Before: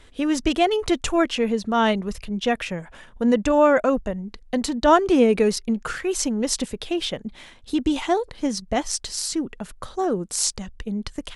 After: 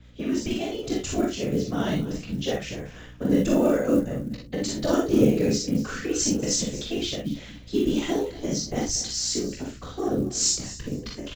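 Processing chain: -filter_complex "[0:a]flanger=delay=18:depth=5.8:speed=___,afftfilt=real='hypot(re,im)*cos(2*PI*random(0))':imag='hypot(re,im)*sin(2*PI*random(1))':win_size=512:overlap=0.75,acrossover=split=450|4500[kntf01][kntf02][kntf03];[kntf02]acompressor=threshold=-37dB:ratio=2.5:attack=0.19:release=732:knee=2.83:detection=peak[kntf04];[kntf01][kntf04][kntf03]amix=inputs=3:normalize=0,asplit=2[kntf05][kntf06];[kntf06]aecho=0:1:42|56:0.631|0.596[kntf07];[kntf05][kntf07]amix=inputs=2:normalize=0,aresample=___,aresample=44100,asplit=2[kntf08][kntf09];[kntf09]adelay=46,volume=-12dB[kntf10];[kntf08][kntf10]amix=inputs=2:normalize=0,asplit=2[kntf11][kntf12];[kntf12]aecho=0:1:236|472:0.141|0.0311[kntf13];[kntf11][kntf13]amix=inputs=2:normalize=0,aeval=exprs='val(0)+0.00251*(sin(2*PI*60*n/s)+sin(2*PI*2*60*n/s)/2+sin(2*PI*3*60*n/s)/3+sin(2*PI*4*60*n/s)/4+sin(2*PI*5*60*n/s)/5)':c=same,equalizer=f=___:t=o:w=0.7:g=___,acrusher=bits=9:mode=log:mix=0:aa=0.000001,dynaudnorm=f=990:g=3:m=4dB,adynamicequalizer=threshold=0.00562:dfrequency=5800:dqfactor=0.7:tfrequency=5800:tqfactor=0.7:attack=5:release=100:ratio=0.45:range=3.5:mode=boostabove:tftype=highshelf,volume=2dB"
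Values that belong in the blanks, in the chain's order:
0.43, 16000, 940, -6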